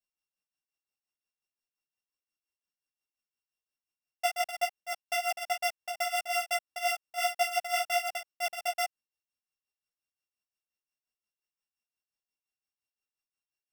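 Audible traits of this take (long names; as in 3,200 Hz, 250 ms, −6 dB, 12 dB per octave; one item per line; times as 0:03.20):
a buzz of ramps at a fixed pitch in blocks of 16 samples
tremolo triangle 5.7 Hz, depth 85%
a shimmering, thickened sound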